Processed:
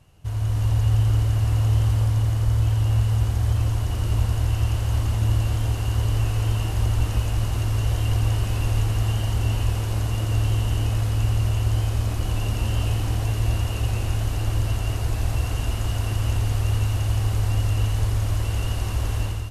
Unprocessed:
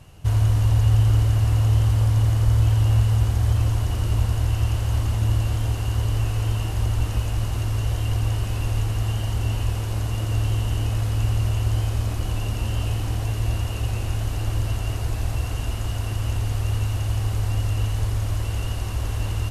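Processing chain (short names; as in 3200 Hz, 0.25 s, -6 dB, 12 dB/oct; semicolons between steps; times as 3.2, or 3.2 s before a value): AGC; gain -8.5 dB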